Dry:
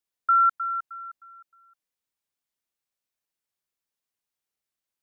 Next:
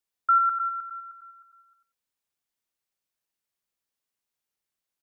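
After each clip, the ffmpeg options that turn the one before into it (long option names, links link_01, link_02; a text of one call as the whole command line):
ffmpeg -i in.wav -af "aecho=1:1:93|186:0.376|0.0601" out.wav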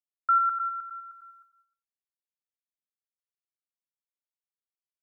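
ffmpeg -i in.wav -af "agate=range=-33dB:threshold=-51dB:ratio=3:detection=peak,volume=-2dB" out.wav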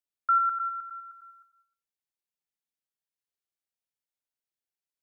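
ffmpeg -i in.wav -af "equalizer=frequency=1100:width_type=o:width=0.22:gain=-7" out.wav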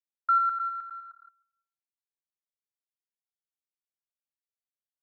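ffmpeg -i in.wav -af "afwtdn=0.00708" out.wav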